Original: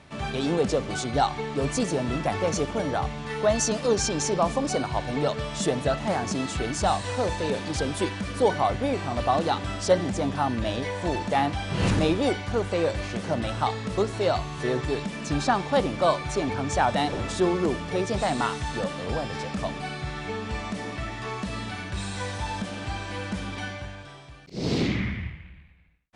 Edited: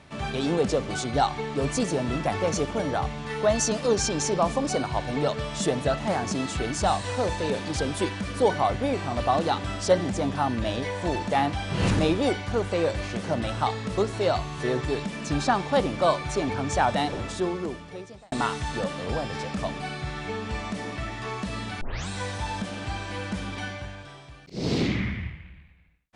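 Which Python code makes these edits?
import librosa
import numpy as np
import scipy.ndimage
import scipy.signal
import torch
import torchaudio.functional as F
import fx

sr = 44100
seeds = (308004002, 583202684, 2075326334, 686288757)

y = fx.edit(x, sr, fx.fade_out_span(start_s=16.89, length_s=1.43),
    fx.tape_start(start_s=21.81, length_s=0.27), tone=tone)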